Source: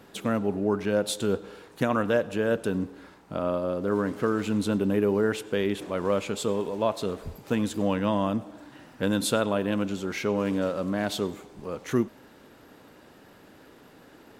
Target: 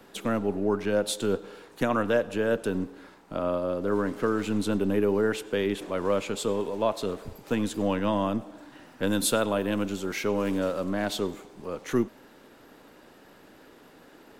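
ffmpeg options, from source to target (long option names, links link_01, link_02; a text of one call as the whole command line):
ffmpeg -i in.wav -filter_complex "[0:a]asettb=1/sr,asplit=3[link_01][link_02][link_03];[link_01]atrim=end=9.074[link_04];[link_02]atrim=start=9.07:end=10.84,asetpts=PTS-STARTPTS,afade=type=in:duration=0.004:curve=qsin,afade=type=out:start_time=1.766:duration=0.004:curve=qsin,highshelf=frequency=9900:gain=9[link_05];[link_03]atrim=start=10.836[link_06];[link_04][link_05]acrossfade=duration=0.004:curve1=hsin:curve2=qsin[link_07];[link_07][link_06]acrossfade=duration=0.004:curve1=qsin:curve2=hsin,acrossover=split=190|800|3900[link_08][link_09][link_10][link_11];[link_08]aeval=exprs='max(val(0),0)':channel_layout=same[link_12];[link_12][link_09][link_10][link_11]amix=inputs=4:normalize=0" out.wav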